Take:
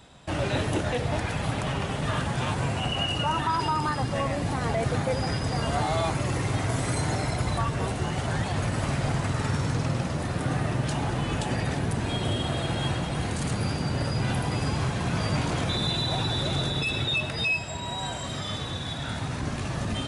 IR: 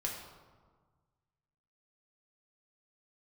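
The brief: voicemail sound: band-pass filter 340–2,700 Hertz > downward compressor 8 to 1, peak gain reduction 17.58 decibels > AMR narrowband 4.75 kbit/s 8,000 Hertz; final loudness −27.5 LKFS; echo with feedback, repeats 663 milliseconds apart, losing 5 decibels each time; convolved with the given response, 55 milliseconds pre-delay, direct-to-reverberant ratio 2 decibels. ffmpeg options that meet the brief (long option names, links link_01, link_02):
-filter_complex "[0:a]aecho=1:1:663|1326|1989|2652|3315|3978|4641:0.562|0.315|0.176|0.0988|0.0553|0.031|0.0173,asplit=2[link_01][link_02];[1:a]atrim=start_sample=2205,adelay=55[link_03];[link_02][link_03]afir=irnorm=-1:irlink=0,volume=-4dB[link_04];[link_01][link_04]amix=inputs=2:normalize=0,highpass=340,lowpass=2700,acompressor=threshold=-38dB:ratio=8,volume=18dB" -ar 8000 -c:a libopencore_amrnb -b:a 4750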